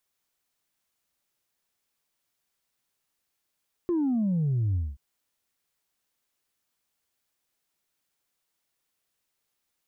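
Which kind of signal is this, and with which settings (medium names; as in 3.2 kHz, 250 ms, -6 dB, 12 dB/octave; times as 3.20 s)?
sub drop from 360 Hz, over 1.08 s, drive 0.5 dB, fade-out 0.22 s, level -23 dB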